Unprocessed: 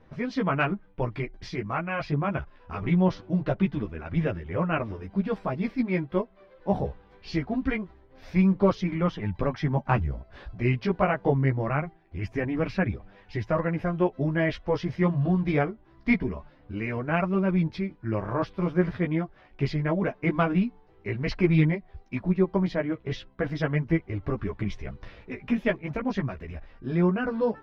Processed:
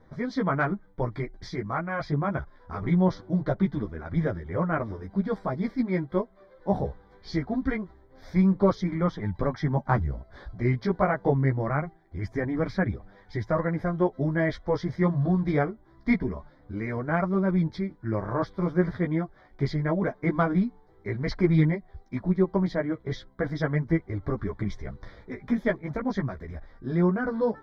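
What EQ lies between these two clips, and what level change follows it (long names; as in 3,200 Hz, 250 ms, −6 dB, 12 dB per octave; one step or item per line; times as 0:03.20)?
Butterworth band-reject 2,700 Hz, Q 2.2
0.0 dB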